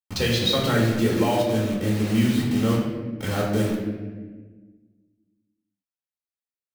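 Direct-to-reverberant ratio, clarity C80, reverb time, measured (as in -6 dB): -4.5 dB, 4.5 dB, 1.4 s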